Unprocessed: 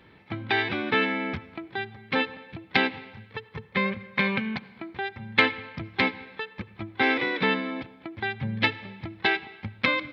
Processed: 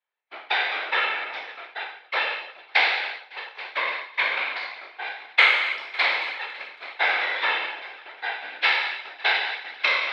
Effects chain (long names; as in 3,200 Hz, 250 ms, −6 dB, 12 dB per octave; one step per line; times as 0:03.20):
peak hold with a decay on every bin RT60 1.21 s
echo machine with several playback heads 277 ms, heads all three, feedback 46%, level −18 dB
downward expander −26 dBFS
random phases in short frames
high-pass filter 600 Hz 24 dB per octave